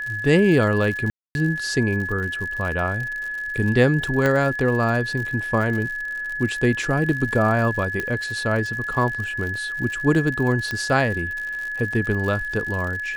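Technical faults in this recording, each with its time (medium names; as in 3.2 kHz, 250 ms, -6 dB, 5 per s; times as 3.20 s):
crackle 81 per s -29 dBFS
whine 1.7 kHz -26 dBFS
1.10–1.35 s: dropout 251 ms
4.26 s: pop -9 dBFS
8.00 s: pop -13 dBFS
10.71 s: pop -13 dBFS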